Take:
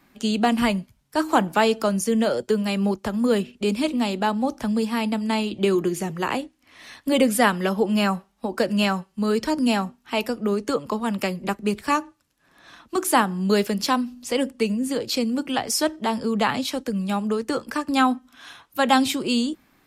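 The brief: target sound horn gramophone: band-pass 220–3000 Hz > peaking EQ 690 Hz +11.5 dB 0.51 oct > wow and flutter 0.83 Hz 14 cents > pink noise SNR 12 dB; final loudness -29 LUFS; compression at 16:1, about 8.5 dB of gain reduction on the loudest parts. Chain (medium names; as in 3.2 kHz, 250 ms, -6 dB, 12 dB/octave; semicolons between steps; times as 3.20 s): compression 16:1, threshold -21 dBFS; band-pass 220–3000 Hz; peaking EQ 690 Hz +11.5 dB 0.51 oct; wow and flutter 0.83 Hz 14 cents; pink noise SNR 12 dB; trim -3.5 dB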